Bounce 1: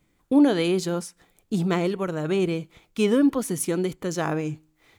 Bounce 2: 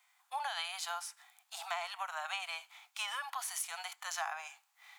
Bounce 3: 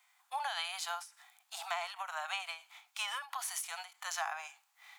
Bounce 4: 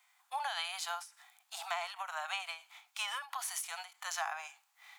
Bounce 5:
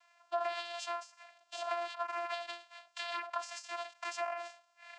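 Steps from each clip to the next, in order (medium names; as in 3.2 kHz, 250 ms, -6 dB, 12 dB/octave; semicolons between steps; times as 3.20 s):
steep high-pass 730 Hz 72 dB/octave; harmonic-percussive split percussive -10 dB; compression 6:1, threshold -41 dBFS, peak gain reduction 10 dB; trim +6 dB
endings held to a fixed fall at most 170 dB/s; trim +1 dB
no audible change
band-stop 2.4 kHz, Q 6.5; compression, threshold -40 dBFS, peak gain reduction 8 dB; vocoder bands 8, saw 344 Hz; trim +7 dB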